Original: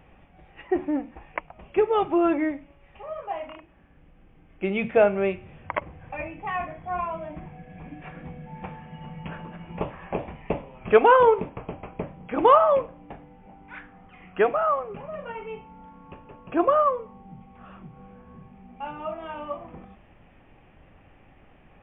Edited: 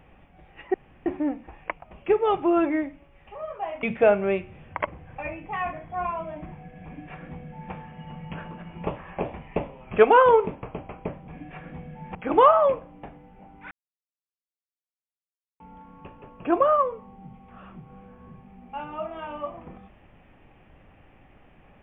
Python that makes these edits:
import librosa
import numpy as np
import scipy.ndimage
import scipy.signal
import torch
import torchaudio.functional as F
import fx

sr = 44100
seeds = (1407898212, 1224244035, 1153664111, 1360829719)

y = fx.edit(x, sr, fx.insert_room_tone(at_s=0.74, length_s=0.32),
    fx.cut(start_s=3.51, length_s=1.26),
    fx.duplicate(start_s=7.79, length_s=0.87, to_s=12.22),
    fx.silence(start_s=13.78, length_s=1.89), tone=tone)